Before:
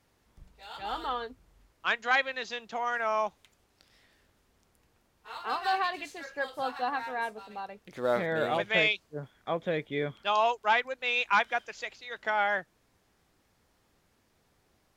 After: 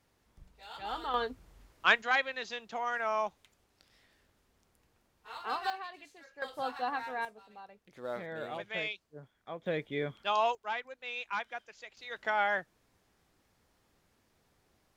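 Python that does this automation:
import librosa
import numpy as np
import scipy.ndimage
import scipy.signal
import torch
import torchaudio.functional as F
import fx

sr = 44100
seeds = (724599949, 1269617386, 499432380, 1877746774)

y = fx.gain(x, sr, db=fx.steps((0.0, -3.0), (1.14, 4.0), (2.02, -3.0), (5.7, -13.5), (6.42, -3.0), (7.25, -11.0), (9.66, -3.0), (10.55, -11.0), (11.97, -2.0)))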